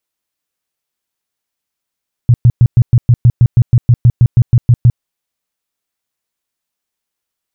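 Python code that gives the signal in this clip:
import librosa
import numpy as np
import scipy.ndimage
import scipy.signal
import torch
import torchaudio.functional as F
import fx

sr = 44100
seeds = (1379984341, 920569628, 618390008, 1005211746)

y = fx.tone_burst(sr, hz=120.0, cycles=6, every_s=0.16, bursts=17, level_db=-2.5)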